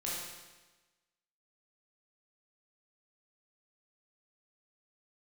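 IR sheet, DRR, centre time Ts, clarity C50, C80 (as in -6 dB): -6.5 dB, 89 ms, -1.5 dB, 1.5 dB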